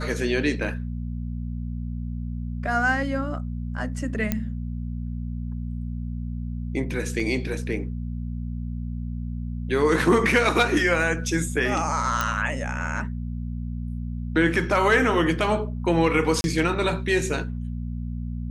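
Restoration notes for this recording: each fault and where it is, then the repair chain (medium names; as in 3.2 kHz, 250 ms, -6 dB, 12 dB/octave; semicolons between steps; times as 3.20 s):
hum 60 Hz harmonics 4 -30 dBFS
4.32 s: pop -9 dBFS
7.20 s: dropout 3.1 ms
12.21 s: pop -9 dBFS
16.41–16.44 s: dropout 31 ms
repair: de-click; de-hum 60 Hz, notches 4; interpolate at 7.20 s, 3.1 ms; interpolate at 16.41 s, 31 ms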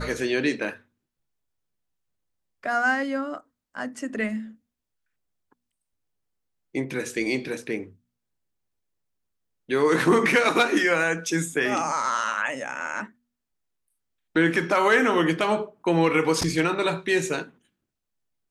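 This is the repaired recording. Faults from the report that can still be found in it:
nothing left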